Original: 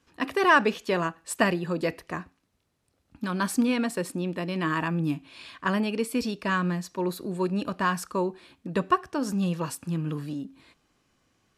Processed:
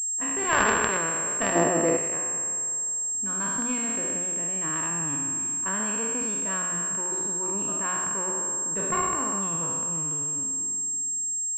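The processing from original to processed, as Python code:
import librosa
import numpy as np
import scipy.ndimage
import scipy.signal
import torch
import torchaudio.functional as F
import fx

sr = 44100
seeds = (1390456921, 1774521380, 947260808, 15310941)

y = fx.spec_trails(x, sr, decay_s=2.73)
y = fx.hum_notches(y, sr, base_hz=60, count=6)
y = fx.env_lowpass(y, sr, base_hz=1500.0, full_db=-14.0)
y = fx.cheby_harmonics(y, sr, harmonics=(2, 3), levels_db=(-9, -18), full_scale_db=-2.0)
y = fx.peak_eq(y, sr, hz=370.0, db=11.0, octaves=3.0, at=(1.55, 1.97))
y = fx.pwm(y, sr, carrier_hz=7500.0)
y = F.gain(torch.from_numpy(y), -7.0).numpy()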